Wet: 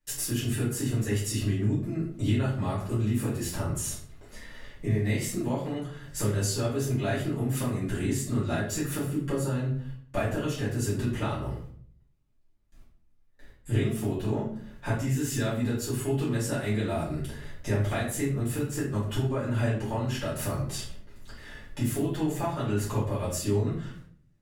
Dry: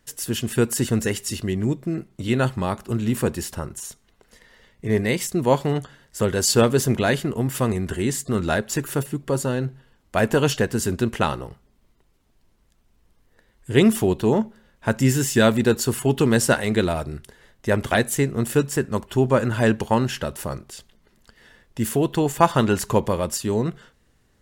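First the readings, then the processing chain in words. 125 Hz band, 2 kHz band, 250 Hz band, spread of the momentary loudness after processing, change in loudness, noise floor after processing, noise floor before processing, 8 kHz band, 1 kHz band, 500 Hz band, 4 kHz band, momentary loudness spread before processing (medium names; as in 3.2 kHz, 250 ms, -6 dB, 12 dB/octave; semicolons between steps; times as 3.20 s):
-3.0 dB, -10.0 dB, -7.5 dB, 9 LU, -7.5 dB, -60 dBFS, -62 dBFS, -7.0 dB, -11.0 dB, -10.5 dB, -9.0 dB, 12 LU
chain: gate with hold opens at -46 dBFS; compression 12:1, threshold -32 dBFS, peak gain reduction 23 dB; simulated room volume 63 m³, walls mixed, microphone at 2.4 m; trim -5.5 dB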